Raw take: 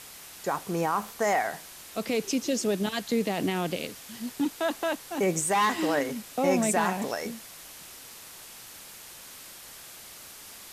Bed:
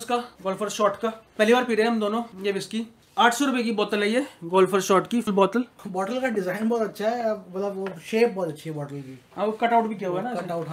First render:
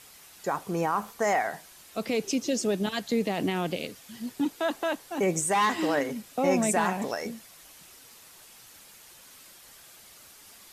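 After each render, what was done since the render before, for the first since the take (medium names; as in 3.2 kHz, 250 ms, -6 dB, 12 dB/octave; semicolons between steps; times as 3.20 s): noise reduction 7 dB, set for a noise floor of -46 dBFS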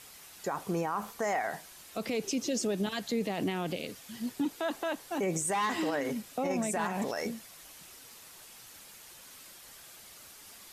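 peak limiter -23 dBFS, peak gain reduction 11 dB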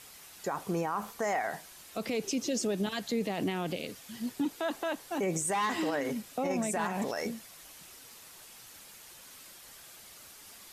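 no audible change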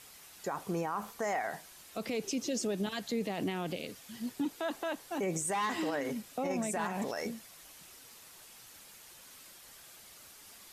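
trim -2.5 dB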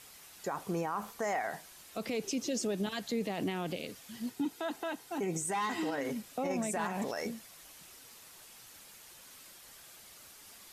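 4.30–5.98 s: comb of notches 570 Hz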